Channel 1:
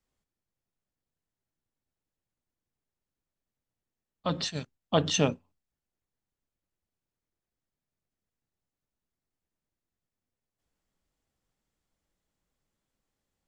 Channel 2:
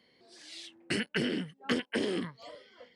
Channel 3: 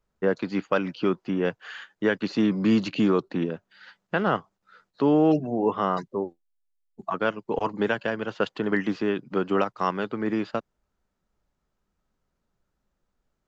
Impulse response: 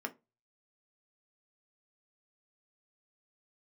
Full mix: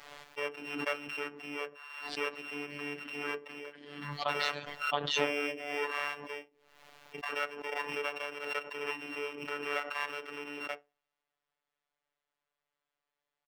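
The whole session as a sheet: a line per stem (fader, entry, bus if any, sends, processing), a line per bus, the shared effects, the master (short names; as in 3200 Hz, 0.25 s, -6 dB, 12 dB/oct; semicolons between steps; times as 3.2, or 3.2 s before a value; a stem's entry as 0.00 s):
+3.0 dB, 0.00 s, no bus, no send, compressor, threshold -24 dBFS, peak gain reduction 6.5 dB
-15.5 dB, 1.80 s, bus A, no send, resonant low shelf 350 Hz +10.5 dB, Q 1.5
-4.0 dB, 0.15 s, bus A, send -5 dB, sample sorter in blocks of 16 samples; soft clip -14 dBFS, distortion -19 dB; three-band expander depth 70%
bus A: 0.0 dB, compressor 3:1, threshold -37 dBFS, peak gain reduction 13 dB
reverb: on, RT60 0.25 s, pre-delay 3 ms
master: three-band isolator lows -21 dB, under 500 Hz, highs -17 dB, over 4000 Hz; robotiser 145 Hz; backwards sustainer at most 49 dB/s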